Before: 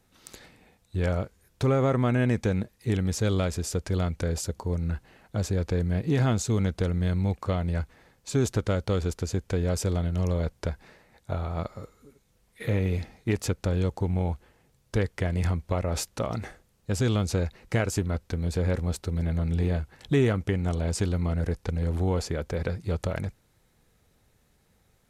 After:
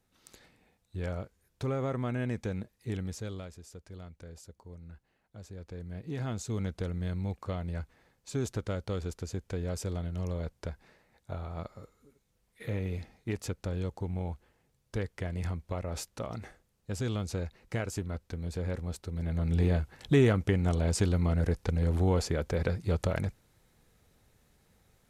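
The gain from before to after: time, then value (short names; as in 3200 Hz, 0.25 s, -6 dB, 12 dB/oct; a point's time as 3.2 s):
3.02 s -9 dB
3.59 s -19.5 dB
5.42 s -19.5 dB
6.6 s -8 dB
19.11 s -8 dB
19.59 s -0.5 dB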